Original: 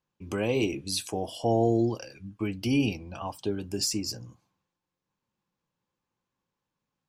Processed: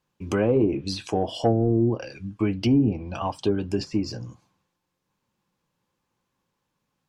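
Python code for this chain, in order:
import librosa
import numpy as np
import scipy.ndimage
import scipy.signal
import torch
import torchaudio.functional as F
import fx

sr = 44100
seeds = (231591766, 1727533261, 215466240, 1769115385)

y = 10.0 ** (-15.5 / 20.0) * np.tanh(x / 10.0 ** (-15.5 / 20.0))
y = fx.env_lowpass_down(y, sr, base_hz=320.0, full_db=-21.0)
y = y * librosa.db_to_amplitude(7.5)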